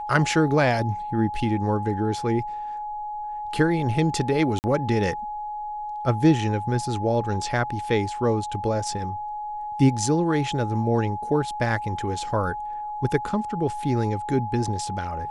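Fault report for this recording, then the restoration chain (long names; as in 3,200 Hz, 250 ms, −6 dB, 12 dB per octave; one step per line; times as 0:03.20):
whistle 840 Hz −29 dBFS
0:04.59–0:04.64: drop-out 49 ms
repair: notch filter 840 Hz, Q 30
repair the gap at 0:04.59, 49 ms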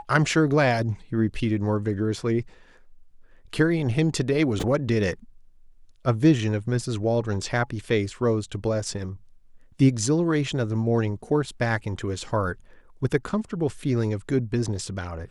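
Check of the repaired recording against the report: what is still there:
none of them is left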